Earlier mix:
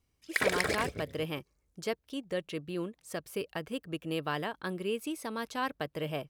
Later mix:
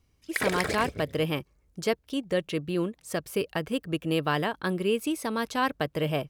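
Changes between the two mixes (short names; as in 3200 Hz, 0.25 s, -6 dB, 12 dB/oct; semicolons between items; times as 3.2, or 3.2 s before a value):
speech +6.5 dB; master: add low shelf 210 Hz +3.5 dB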